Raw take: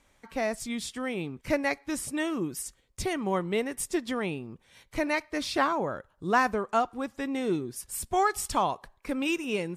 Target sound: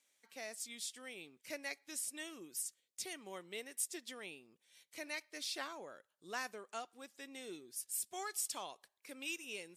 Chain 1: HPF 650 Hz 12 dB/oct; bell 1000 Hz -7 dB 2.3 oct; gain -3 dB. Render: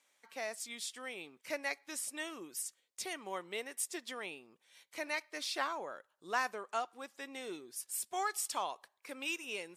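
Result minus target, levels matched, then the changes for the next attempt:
1000 Hz band +6.0 dB
change: bell 1000 Hz -18 dB 2.3 oct

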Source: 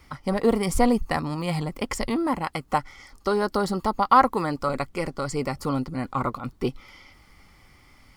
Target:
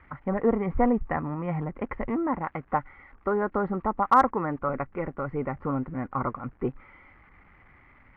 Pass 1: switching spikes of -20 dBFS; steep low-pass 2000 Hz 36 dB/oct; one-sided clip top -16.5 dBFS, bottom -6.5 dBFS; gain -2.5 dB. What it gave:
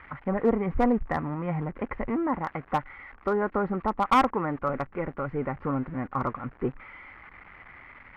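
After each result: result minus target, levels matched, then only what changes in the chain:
switching spikes: distortion +11 dB; one-sided clip: distortion +5 dB
change: switching spikes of -31 dBFS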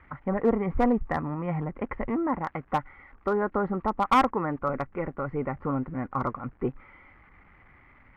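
one-sided clip: distortion +5 dB
change: one-sided clip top -6 dBFS, bottom -6.5 dBFS

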